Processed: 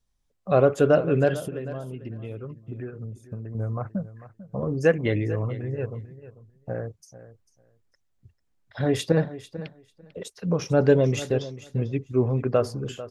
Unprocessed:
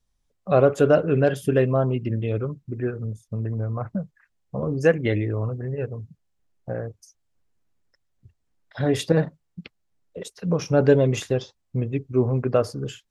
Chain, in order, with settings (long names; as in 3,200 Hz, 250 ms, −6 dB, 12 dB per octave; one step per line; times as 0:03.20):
0:01.36–0:03.55: downward compressor 12 to 1, threshold −30 dBFS, peak gain reduction 16 dB
on a send: repeating echo 445 ms, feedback 15%, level −15.5 dB
on the sum: level −1.5 dB